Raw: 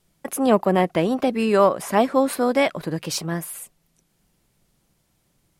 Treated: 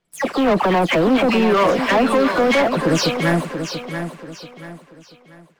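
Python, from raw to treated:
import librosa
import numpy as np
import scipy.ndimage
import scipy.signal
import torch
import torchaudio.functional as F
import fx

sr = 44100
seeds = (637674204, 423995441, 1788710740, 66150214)

p1 = fx.spec_delay(x, sr, highs='early', ms=199)
p2 = scipy.signal.sosfilt(scipy.signal.butter(2, 3400.0, 'lowpass', fs=sr, output='sos'), p1)
p3 = fx.low_shelf(p2, sr, hz=140.0, db=-10.5)
p4 = fx.over_compress(p3, sr, threshold_db=-25.0, ratio=-0.5)
p5 = p3 + (p4 * 10.0 ** (-1.5 / 20.0))
p6 = fx.leveller(p5, sr, passes=3)
p7 = p6 + fx.echo_feedback(p6, sr, ms=685, feedback_pct=34, wet_db=-8.5, dry=0)
y = p7 * 10.0 ** (-4.0 / 20.0)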